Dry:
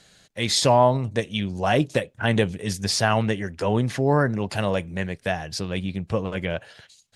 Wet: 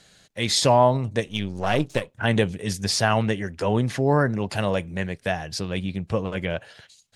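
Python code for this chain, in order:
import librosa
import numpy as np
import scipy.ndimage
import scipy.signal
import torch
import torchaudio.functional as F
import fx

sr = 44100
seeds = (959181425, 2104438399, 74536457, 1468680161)

y = fx.halfwave_gain(x, sr, db=-7.0, at=(1.27, 2.13))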